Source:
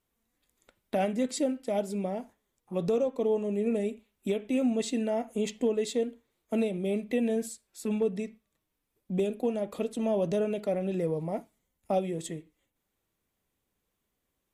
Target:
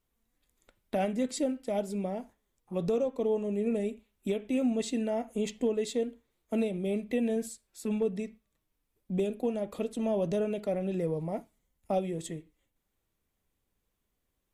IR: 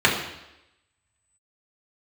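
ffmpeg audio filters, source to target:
-af "lowshelf=f=69:g=10.5,volume=-2dB"

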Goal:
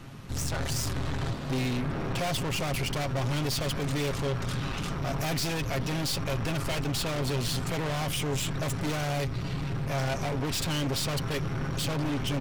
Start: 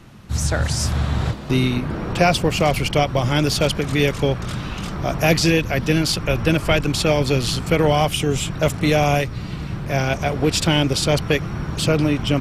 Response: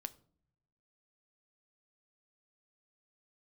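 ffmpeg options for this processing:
-af "aeval=exprs='(tanh(28.2*val(0)+0.35)-tanh(0.35))/28.2':c=same,aecho=1:1:7.4:0.39"

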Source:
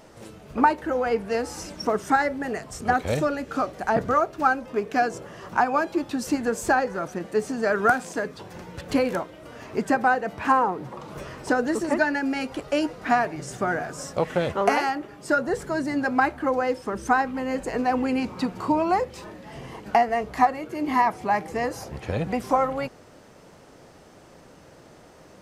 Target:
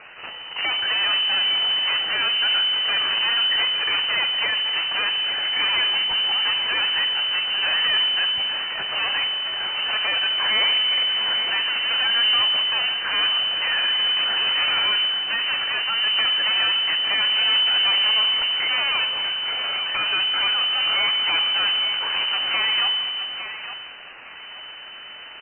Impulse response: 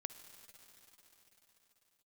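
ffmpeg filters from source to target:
-filter_complex "[0:a]alimiter=limit=-16dB:level=0:latency=1:release=69,aresample=11025,asoftclip=type=tanh:threshold=-29.5dB,aresample=44100,bandreject=f=80.75:t=h:w=4,bandreject=f=161.5:t=h:w=4,bandreject=f=242.25:t=h:w=4,bandreject=f=323:t=h:w=4,bandreject=f=403.75:t=h:w=4,bandreject=f=484.5:t=h:w=4,bandreject=f=565.25:t=h:w=4,bandreject=f=646:t=h:w=4,bandreject=f=726.75:t=h:w=4,bandreject=f=807.5:t=h:w=4,acrossover=split=190|1400[a][b][c];[c]aeval=exprs='0.0447*sin(PI/2*3.16*val(0)/0.0447)':c=same[d];[a][b][d]amix=inputs=3:normalize=0,acontrast=62,aeval=exprs='0.224*(cos(1*acos(clip(val(0)/0.224,-1,1)))-cos(1*PI/2))+0.0355*(cos(8*acos(clip(val(0)/0.224,-1,1)))-cos(8*PI/2))':c=same[e];[1:a]atrim=start_sample=2205,asetrate=83790,aresample=44100[f];[e][f]afir=irnorm=-1:irlink=0,lowpass=f=3.1k:t=q:w=0.5098,lowpass=f=3.1k:t=q:w=0.6013,lowpass=f=3.1k:t=q:w=0.9,lowpass=f=3.1k:t=q:w=2.563,afreqshift=-3700,asetrate=36028,aresample=44100,atempo=1.22405,aecho=1:1:859|1718|2577:0.335|0.0938|0.0263,volume=6dB"

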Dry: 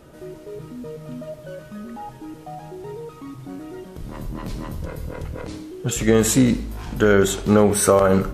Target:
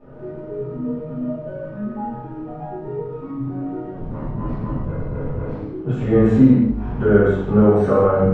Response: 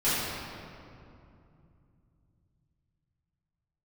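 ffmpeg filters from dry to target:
-filter_complex "[0:a]lowpass=1.2k,asplit=2[a][b];[b]acompressor=threshold=-30dB:ratio=6,volume=1dB[c];[a][c]amix=inputs=2:normalize=0[d];[1:a]atrim=start_sample=2205,afade=t=out:st=0.25:d=0.01,atrim=end_sample=11466[e];[d][e]afir=irnorm=-1:irlink=0,volume=-12.5dB"

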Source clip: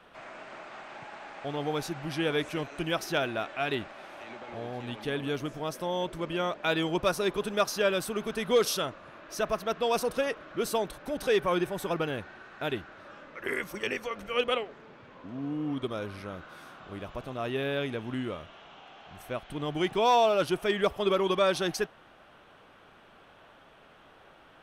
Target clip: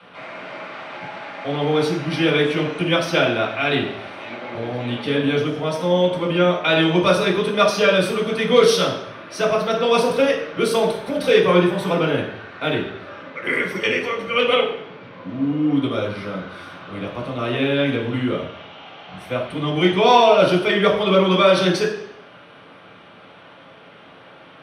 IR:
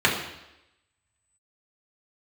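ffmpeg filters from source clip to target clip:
-filter_complex "[0:a]asettb=1/sr,asplit=3[a][b][c];[a]atrim=end=10.094[d];[b]atrim=start=10.09:end=11.34,asetpts=PTS-STARTPTS,afade=t=in:d=0.004:c=qsin,afade=t=out:st=1.246:d=0.004:c=qsin,highshelf=f=9.6k:g=6.5[e];[c]atrim=start=11.336[f];[d][e]acrossfade=d=0.004:c1=hsin:c2=qsin[g];[g][f]acrossfade=d=0.004:c1=qsin:c2=hsin[h];[1:a]atrim=start_sample=2205,asetrate=57330,aresample=44100[i];[h][i]afir=irnorm=-1:irlink=0,volume=-4.5dB"

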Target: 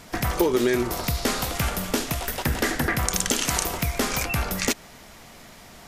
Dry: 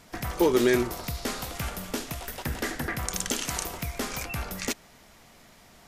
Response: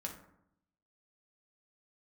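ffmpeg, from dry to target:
-af "acompressor=threshold=-26dB:ratio=6,volume=8dB"

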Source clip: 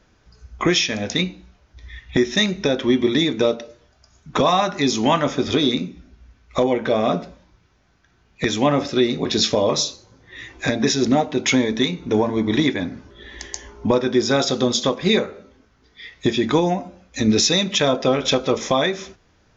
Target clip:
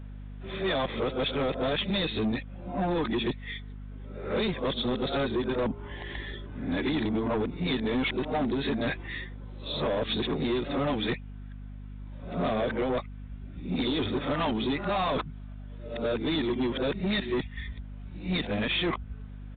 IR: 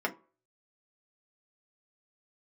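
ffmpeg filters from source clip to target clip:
-af "areverse,acompressor=threshold=-20dB:ratio=6,aresample=8000,asoftclip=type=tanh:threshold=-23.5dB,aresample=44100,aeval=exprs='val(0)+0.01*(sin(2*PI*50*n/s)+sin(2*PI*2*50*n/s)/2+sin(2*PI*3*50*n/s)/3+sin(2*PI*4*50*n/s)/4+sin(2*PI*5*50*n/s)/5)':c=same"

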